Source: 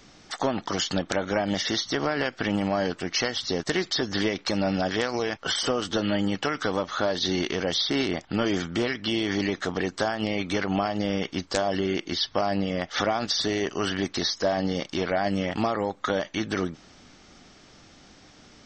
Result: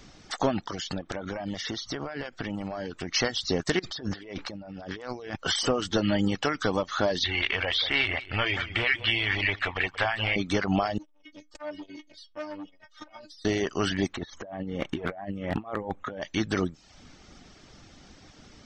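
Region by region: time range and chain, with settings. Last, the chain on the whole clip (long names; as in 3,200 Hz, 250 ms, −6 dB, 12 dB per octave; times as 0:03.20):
0:00.62–0:03.09: high-shelf EQ 5,100 Hz −5.5 dB + downward compressor 10 to 1, threshold −29 dBFS
0:03.79–0:05.36: low-pass filter 3,000 Hz 6 dB per octave + compressor whose output falls as the input rises −38 dBFS
0:07.24–0:10.36: drawn EQ curve 110 Hz 0 dB, 160 Hz −16 dB, 350 Hz −11 dB, 920 Hz +2 dB, 1,400 Hz +2 dB, 2,400 Hz +12 dB, 4,400 Hz −5 dB, 6,500 Hz −17 dB, 11,000 Hz +3 dB + single-tap delay 180 ms −10 dB
0:10.98–0:13.45: stiff-string resonator 300 Hz, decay 0.23 s, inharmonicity 0.002 + saturating transformer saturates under 1,200 Hz
0:14.13–0:16.22: compressor whose output falls as the input rises −31 dBFS, ratio −0.5 + moving average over 9 samples + hard clipping −18.5 dBFS
whole clip: low-shelf EQ 130 Hz +7.5 dB; reverb reduction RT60 0.57 s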